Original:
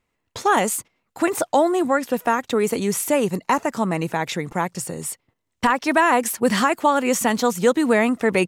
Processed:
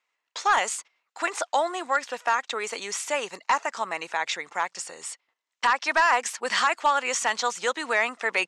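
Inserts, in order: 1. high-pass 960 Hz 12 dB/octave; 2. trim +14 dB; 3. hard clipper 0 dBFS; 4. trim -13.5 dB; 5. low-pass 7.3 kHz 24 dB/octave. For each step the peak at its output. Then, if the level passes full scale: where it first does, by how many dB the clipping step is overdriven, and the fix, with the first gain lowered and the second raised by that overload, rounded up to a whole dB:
-7.5 dBFS, +6.5 dBFS, 0.0 dBFS, -13.5 dBFS, -12.5 dBFS; step 2, 6.5 dB; step 2 +7 dB, step 4 -6.5 dB

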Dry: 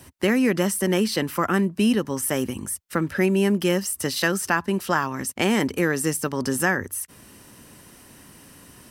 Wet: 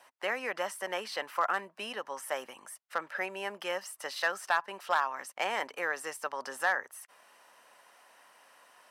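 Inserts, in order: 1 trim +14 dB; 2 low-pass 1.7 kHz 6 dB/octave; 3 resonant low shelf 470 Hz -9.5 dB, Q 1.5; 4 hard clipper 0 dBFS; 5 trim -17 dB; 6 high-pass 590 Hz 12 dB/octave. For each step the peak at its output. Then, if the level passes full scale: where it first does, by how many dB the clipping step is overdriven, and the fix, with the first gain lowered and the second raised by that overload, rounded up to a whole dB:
+7.5 dBFS, +6.0 dBFS, +5.0 dBFS, 0.0 dBFS, -17.0 dBFS, -14.0 dBFS; step 1, 5.0 dB; step 1 +9 dB, step 5 -12 dB

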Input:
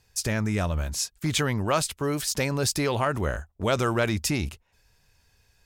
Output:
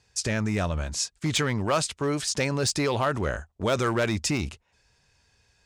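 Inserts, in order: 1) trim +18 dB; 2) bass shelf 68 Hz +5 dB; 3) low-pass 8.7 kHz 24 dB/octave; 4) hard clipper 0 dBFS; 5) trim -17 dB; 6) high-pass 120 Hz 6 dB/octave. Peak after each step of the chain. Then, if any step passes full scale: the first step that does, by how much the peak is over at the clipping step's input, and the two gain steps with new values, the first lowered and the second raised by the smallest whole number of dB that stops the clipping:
+6.0 dBFS, +6.5 dBFS, +6.5 dBFS, 0.0 dBFS, -17.0 dBFS, -14.5 dBFS; step 1, 6.5 dB; step 1 +11 dB, step 5 -10 dB

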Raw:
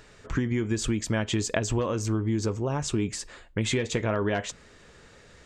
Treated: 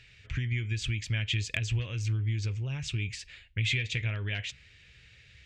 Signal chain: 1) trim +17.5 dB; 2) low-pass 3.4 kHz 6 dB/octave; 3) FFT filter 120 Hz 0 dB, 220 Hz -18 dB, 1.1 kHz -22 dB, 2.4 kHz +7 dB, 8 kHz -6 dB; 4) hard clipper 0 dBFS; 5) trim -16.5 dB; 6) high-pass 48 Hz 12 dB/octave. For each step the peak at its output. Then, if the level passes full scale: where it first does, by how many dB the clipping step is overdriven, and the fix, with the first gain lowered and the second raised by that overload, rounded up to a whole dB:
+6.5 dBFS, +5.5 dBFS, +3.5 dBFS, 0.0 dBFS, -16.5 dBFS, -16.0 dBFS; step 1, 3.5 dB; step 1 +13.5 dB, step 5 -12.5 dB

